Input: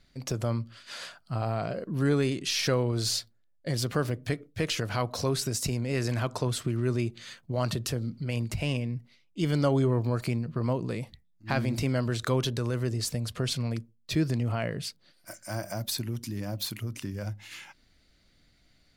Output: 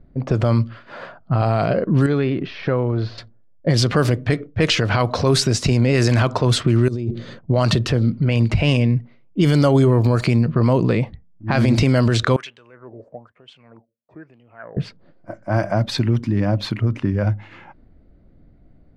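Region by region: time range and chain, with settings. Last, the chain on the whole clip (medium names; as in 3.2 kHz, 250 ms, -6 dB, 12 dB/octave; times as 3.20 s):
2.06–3.18 s: compression 3:1, threshold -33 dBFS + low-pass 4.8 kHz 24 dB/octave
6.88–7.39 s: high-order bell 1.4 kHz -11 dB 2.3 oct + compressor with a negative ratio -38 dBFS
12.36–14.77 s: resonant high shelf 5.6 kHz +13 dB, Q 1.5 + waveshaping leveller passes 1 + wah-wah 1.1 Hz 540–3100 Hz, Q 9.3
whole clip: level-controlled noise filter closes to 550 Hz, open at -22 dBFS; loudness maximiser +21.5 dB; trim -6 dB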